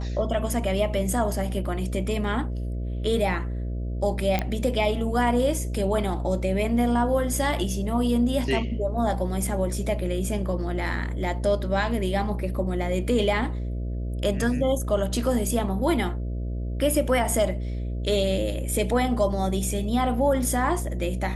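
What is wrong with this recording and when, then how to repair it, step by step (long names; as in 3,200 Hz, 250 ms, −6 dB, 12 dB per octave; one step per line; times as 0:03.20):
mains buzz 60 Hz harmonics 11 −29 dBFS
0:04.39: click −11 dBFS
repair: click removal
hum removal 60 Hz, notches 11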